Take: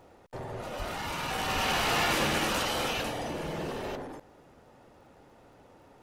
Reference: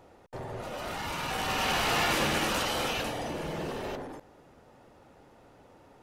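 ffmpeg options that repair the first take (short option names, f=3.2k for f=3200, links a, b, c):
-filter_complex "[0:a]adeclick=t=4,asplit=3[a][b][c];[a]afade=t=out:st=0.78:d=0.02[d];[b]highpass=f=140:w=0.5412,highpass=f=140:w=1.3066,afade=t=in:st=0.78:d=0.02,afade=t=out:st=0.9:d=0.02[e];[c]afade=t=in:st=0.9:d=0.02[f];[d][e][f]amix=inputs=3:normalize=0,asplit=3[g][h][i];[g]afade=t=out:st=1.54:d=0.02[j];[h]highpass=f=140:w=0.5412,highpass=f=140:w=1.3066,afade=t=in:st=1.54:d=0.02,afade=t=out:st=1.66:d=0.02[k];[i]afade=t=in:st=1.66:d=0.02[l];[j][k][l]amix=inputs=3:normalize=0"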